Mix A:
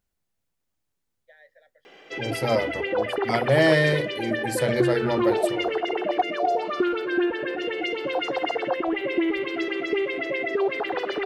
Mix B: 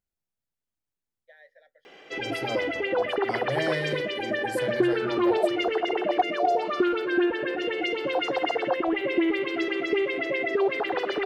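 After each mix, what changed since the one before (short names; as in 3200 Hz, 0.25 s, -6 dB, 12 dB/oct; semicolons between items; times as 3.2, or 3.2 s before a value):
second voice -10.0 dB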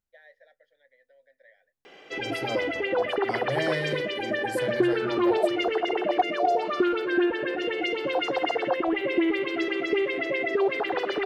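first voice: entry -1.15 s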